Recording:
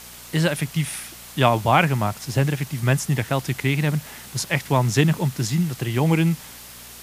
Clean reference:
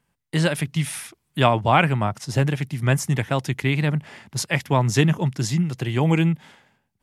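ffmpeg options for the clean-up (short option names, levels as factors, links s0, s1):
-af "adeclick=t=4,bandreject=f=59.6:t=h:w=4,bandreject=f=119.2:t=h:w=4,bandreject=f=178.8:t=h:w=4,bandreject=f=238.4:t=h:w=4,afwtdn=0.01"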